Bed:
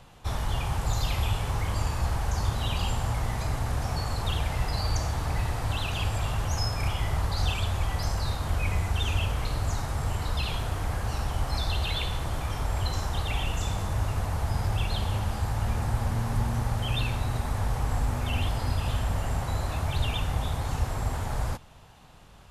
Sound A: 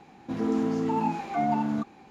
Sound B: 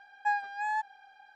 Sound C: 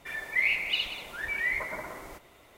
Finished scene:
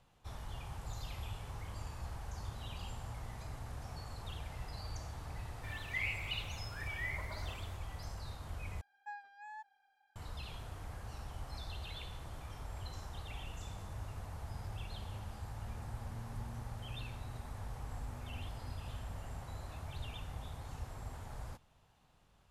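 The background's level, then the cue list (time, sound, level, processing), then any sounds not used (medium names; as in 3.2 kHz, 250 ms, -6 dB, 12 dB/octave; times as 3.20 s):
bed -16.5 dB
5.58 s: add C -12 dB
8.81 s: replace with B -18 dB
not used: A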